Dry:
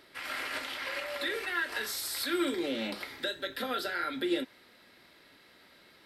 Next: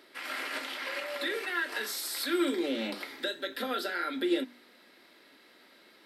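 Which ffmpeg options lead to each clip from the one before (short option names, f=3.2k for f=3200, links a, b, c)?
-af "lowshelf=f=170:t=q:w=1.5:g=-12,bandreject=f=48.69:t=h:w=4,bandreject=f=97.38:t=h:w=4,bandreject=f=146.07:t=h:w=4,bandreject=f=194.76:t=h:w=4,bandreject=f=243.45:t=h:w=4,bandreject=f=292.14:t=h:w=4"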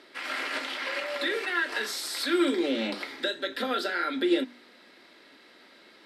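-af "lowpass=8.1k,volume=4dB"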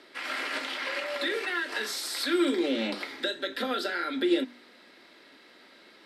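-filter_complex "[0:a]acrossover=split=420|3000[a][b][c];[b]acompressor=threshold=-29dB:ratio=6[d];[a][d][c]amix=inputs=3:normalize=0"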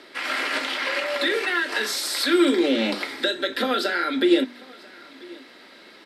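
-af "aecho=1:1:989:0.0668,volume=7dB"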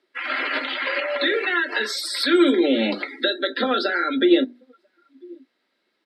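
-af "afftdn=nr=27:nf=-30,volume=2dB"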